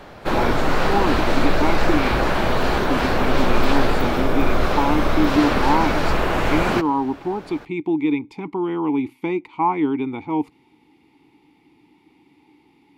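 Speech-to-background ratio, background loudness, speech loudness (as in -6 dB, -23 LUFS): -2.5 dB, -21.5 LUFS, -24.0 LUFS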